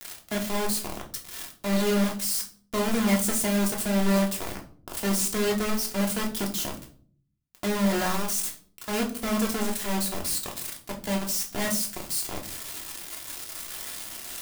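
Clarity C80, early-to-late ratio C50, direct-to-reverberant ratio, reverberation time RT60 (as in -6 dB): 16.5 dB, 12.0 dB, 0.0 dB, 0.50 s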